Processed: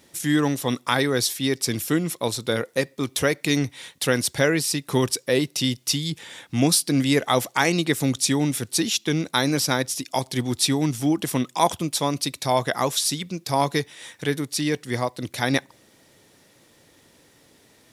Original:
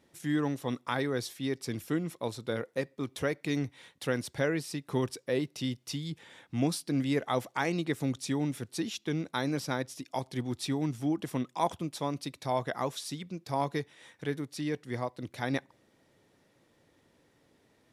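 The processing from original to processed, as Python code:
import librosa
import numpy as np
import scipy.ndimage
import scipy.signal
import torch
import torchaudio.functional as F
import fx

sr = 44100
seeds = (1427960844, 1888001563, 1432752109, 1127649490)

y = fx.high_shelf(x, sr, hz=3200.0, db=11.5)
y = y * 10.0 ** (8.5 / 20.0)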